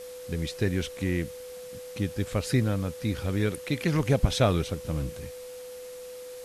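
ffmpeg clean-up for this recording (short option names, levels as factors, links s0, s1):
-af "bandreject=f=500:w=30,afwtdn=0.0035"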